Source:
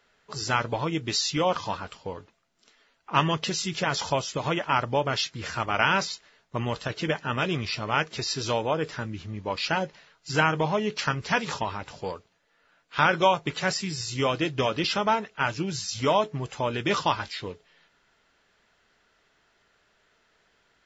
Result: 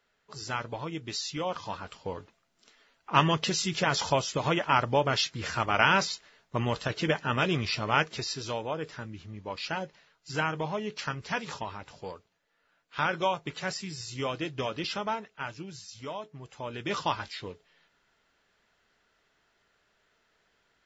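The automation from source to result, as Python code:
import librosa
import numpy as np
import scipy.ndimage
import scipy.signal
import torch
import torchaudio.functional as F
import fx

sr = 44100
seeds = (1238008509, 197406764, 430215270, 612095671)

y = fx.gain(x, sr, db=fx.line((1.54, -8.0), (2.14, 0.0), (8.01, 0.0), (8.44, -7.0), (14.96, -7.0), (16.2, -16.0), (17.08, -4.5)))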